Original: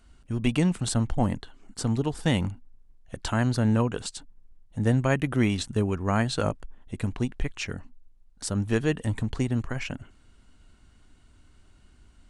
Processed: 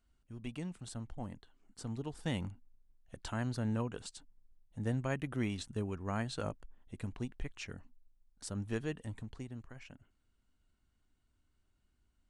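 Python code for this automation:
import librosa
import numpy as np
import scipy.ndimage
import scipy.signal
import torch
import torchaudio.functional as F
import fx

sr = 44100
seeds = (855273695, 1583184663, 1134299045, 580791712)

y = fx.gain(x, sr, db=fx.line((1.35, -18.5), (2.33, -12.0), (8.76, -12.0), (9.6, -20.0)))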